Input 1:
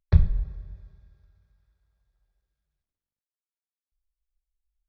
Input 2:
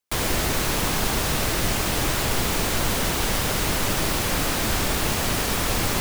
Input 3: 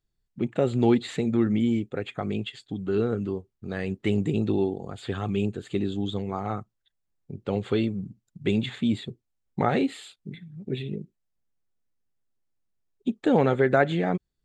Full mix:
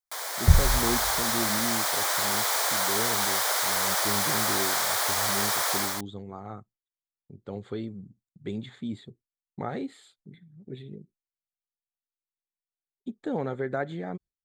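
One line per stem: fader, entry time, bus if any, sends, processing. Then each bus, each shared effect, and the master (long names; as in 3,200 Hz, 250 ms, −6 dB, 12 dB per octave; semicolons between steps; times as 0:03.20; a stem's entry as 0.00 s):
0.0 dB, 0.35 s, no send, no processing
−8.5 dB, 0.00 s, no send, high-pass filter 610 Hz 24 dB per octave; automatic gain control gain up to 10 dB
−9.5 dB, 0.00 s, no send, noise gate with hold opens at −48 dBFS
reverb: not used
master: parametric band 2,700 Hz −13.5 dB 0.3 octaves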